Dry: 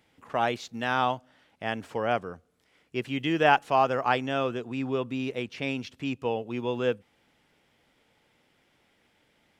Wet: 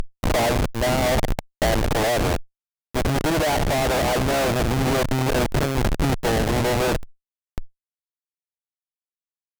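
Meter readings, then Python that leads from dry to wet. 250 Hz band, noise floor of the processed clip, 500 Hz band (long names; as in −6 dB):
+7.0 dB, below −85 dBFS, +7.0 dB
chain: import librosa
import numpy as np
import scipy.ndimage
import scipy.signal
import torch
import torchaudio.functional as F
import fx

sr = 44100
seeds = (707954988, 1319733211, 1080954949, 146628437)

p1 = fx.bin_compress(x, sr, power=0.4)
p2 = fx.dynamic_eq(p1, sr, hz=620.0, q=5.0, threshold_db=-38.0, ratio=4.0, max_db=7)
p3 = fx.spec_gate(p2, sr, threshold_db=-20, keep='strong')
p4 = fx.highpass(p3, sr, hz=45.0, slope=6)
p5 = fx.high_shelf_res(p4, sr, hz=4600.0, db=10.0, q=3.0)
p6 = p5 + fx.echo_bbd(p5, sr, ms=98, stages=1024, feedback_pct=72, wet_db=-21.5, dry=0)
p7 = fx.schmitt(p6, sr, flips_db=-23.5)
p8 = fx.tube_stage(p7, sr, drive_db=34.0, bias=0.7)
p9 = fx.rider(p8, sr, range_db=10, speed_s=0.5)
p10 = p8 + F.gain(torch.from_numpy(p9), 2.0).numpy()
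y = F.gain(torch.from_numpy(p10), 7.5).numpy()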